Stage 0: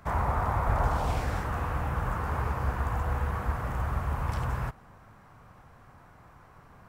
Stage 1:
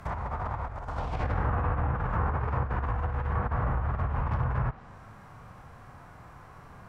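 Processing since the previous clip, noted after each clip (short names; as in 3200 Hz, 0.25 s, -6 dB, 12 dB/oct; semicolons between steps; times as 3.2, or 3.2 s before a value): negative-ratio compressor -31 dBFS, ratio -0.5; harmonic-percussive split percussive -7 dB; treble ducked by the level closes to 1700 Hz, closed at -28 dBFS; gain +4.5 dB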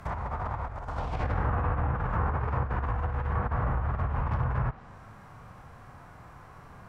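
nothing audible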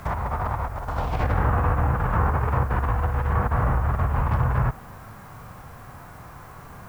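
added noise blue -64 dBFS; gain +6.5 dB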